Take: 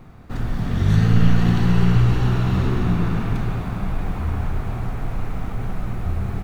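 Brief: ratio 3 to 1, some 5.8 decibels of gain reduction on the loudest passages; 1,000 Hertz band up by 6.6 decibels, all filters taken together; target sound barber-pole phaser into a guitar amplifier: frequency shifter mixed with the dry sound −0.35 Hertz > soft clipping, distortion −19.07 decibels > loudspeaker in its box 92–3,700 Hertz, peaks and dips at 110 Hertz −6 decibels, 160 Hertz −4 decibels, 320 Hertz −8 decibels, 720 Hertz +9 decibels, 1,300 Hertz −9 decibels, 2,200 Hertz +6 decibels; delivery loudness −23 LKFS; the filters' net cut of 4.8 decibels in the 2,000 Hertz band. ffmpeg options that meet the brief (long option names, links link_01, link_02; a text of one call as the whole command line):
ffmpeg -i in.wav -filter_complex "[0:a]equalizer=frequency=1000:width_type=o:gain=7,equalizer=frequency=2000:width_type=o:gain=-9,acompressor=threshold=-17dB:ratio=3,asplit=2[link_01][link_02];[link_02]afreqshift=-0.35[link_03];[link_01][link_03]amix=inputs=2:normalize=1,asoftclip=threshold=-17.5dB,highpass=92,equalizer=frequency=110:width_type=q:width=4:gain=-6,equalizer=frequency=160:width_type=q:width=4:gain=-4,equalizer=frequency=320:width_type=q:width=4:gain=-8,equalizer=frequency=720:width_type=q:width=4:gain=9,equalizer=frequency=1300:width_type=q:width=4:gain=-9,equalizer=frequency=2200:width_type=q:width=4:gain=6,lowpass=frequency=3700:width=0.5412,lowpass=frequency=3700:width=1.3066,volume=10dB" out.wav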